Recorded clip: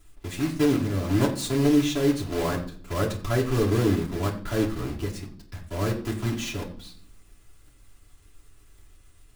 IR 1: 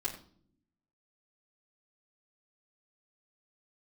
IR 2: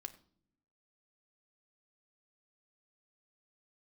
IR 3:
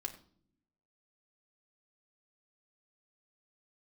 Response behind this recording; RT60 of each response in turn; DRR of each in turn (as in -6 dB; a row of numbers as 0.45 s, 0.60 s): 1; no single decay rate, no single decay rate, no single decay rate; -8.0 dB, 5.0 dB, 0.5 dB